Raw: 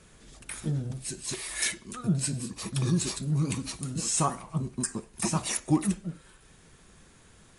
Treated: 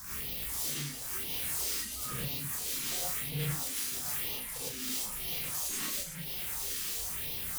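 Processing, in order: one-bit delta coder 64 kbps, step -32.5 dBFS; pre-emphasis filter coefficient 0.9; reverb removal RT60 1.2 s; dynamic bell 5.5 kHz, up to -6 dB, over -55 dBFS, Q 3.8; in parallel at +1.5 dB: peak limiter -36.5 dBFS, peak gain reduction 10.5 dB; on the sum: integer overflow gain 35.5 dB; 1.19–1.94 s: frequency shift -130 Hz; phase shifter stages 4, 1 Hz, lowest notch 100–1500 Hz; on a send: flutter echo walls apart 5.9 m, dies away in 0.26 s; on the sum: gated-style reverb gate 130 ms rising, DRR -7.5 dB; trim -1.5 dB

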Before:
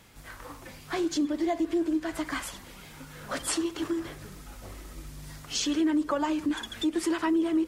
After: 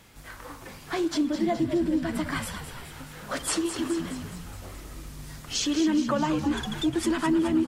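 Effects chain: 1.08–2.92 s: band-stop 6.6 kHz, Q 7.7; frequency-shifting echo 210 ms, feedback 59%, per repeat -79 Hz, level -9 dB; trim +1.5 dB

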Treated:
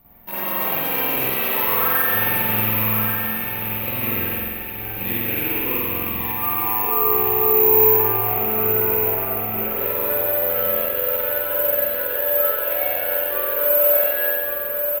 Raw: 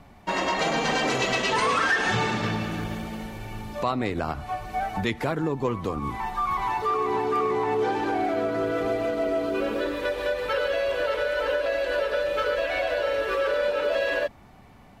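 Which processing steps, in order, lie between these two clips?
rattle on loud lows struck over -32 dBFS, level -16 dBFS; 3.39–5.40 s: time-frequency box 580–1500 Hz -12 dB; 7.28–9.71 s: tone controls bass +5 dB, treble -14 dB; feedback delay 1133 ms, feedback 44%, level -7 dB; spring tank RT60 1.9 s, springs 46 ms, chirp 50 ms, DRR -9.5 dB; careless resampling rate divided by 3×, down filtered, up zero stuff; trim -11.5 dB

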